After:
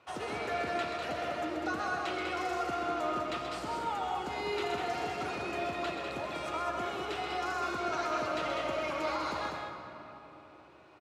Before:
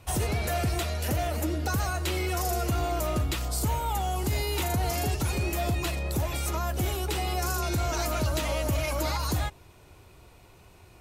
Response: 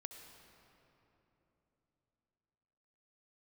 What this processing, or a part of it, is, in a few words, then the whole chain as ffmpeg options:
station announcement: -filter_complex "[0:a]highpass=310,lowpass=3600,equalizer=frequency=1300:width_type=o:width=0.43:gain=6.5,aecho=1:1:131.2|198.3:0.447|0.562[link_01];[1:a]atrim=start_sample=2205[link_02];[link_01][link_02]afir=irnorm=-1:irlink=0"

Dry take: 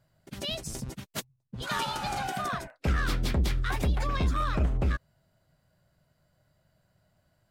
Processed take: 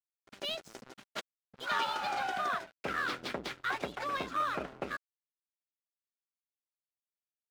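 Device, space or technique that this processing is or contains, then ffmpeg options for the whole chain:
pocket radio on a weak battery: -af "highpass=380,lowpass=4100,aeval=exprs='sgn(val(0))*max(abs(val(0))-0.00355,0)':channel_layout=same,equalizer=frequency=1400:width_type=o:width=0.21:gain=4"

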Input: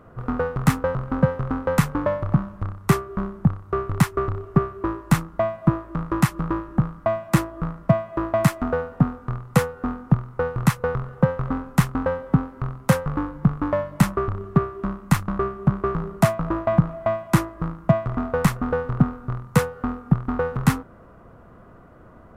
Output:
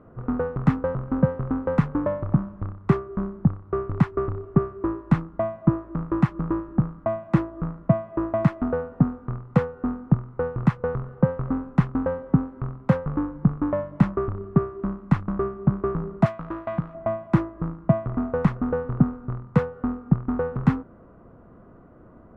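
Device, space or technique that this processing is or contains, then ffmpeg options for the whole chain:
phone in a pocket: -filter_complex "[0:a]lowpass=3400,equalizer=frequency=280:width_type=o:width=1.5:gain=5,highshelf=frequency=2100:gain=-10.5,asettb=1/sr,asplit=3[link_01][link_02][link_03];[link_01]atrim=end=16.264[link_04];[link_02]atrim=start=16.26:end=16.95,asetpts=PTS-STARTPTS,afade=type=in:duration=0.004:curve=qsin,afade=type=out:start_time=0.686:duration=0.004:curve=qsin,tiltshelf=frequency=1400:gain=-9[link_05];[link_03]atrim=start=16.946[link_06];[link_04][link_05]acrossfade=duration=0.004:curve1=hsin:curve2=qsin[link_07];[link_07][link_06]acrossfade=duration=0.004:curve1=qsin:curve2=hsin,volume=-3.5dB"

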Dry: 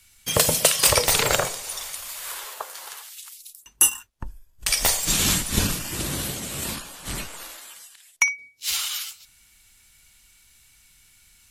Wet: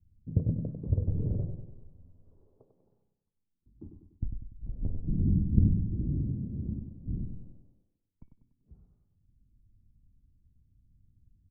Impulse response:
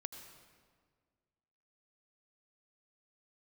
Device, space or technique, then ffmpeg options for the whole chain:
the neighbour's flat through the wall: -filter_complex "[0:a]lowpass=frequency=270:width=0.5412,lowpass=frequency=270:width=1.3066,equalizer=frequency=96:width_type=o:width=0.69:gain=5,asplit=2[link_01][link_02];[link_02]adelay=97,lowpass=frequency=3300:poles=1,volume=-7dB,asplit=2[link_03][link_04];[link_04]adelay=97,lowpass=frequency=3300:poles=1,volume=0.49,asplit=2[link_05][link_06];[link_06]adelay=97,lowpass=frequency=3300:poles=1,volume=0.49,asplit=2[link_07][link_08];[link_08]adelay=97,lowpass=frequency=3300:poles=1,volume=0.49,asplit=2[link_09][link_10];[link_10]adelay=97,lowpass=frequency=3300:poles=1,volume=0.49,asplit=2[link_11][link_12];[link_12]adelay=97,lowpass=frequency=3300:poles=1,volume=0.49[link_13];[link_01][link_03][link_05][link_07][link_09][link_11][link_13]amix=inputs=7:normalize=0"

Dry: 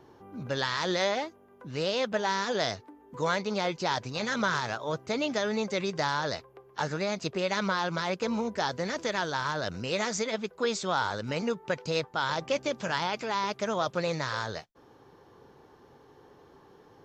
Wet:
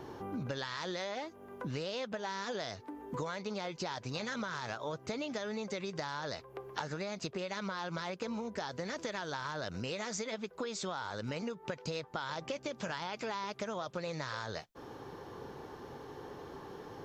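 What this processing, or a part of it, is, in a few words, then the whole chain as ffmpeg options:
serial compression, leveller first: -af "acompressor=threshold=-31dB:ratio=2.5,acompressor=threshold=-45dB:ratio=6,volume=8.5dB"

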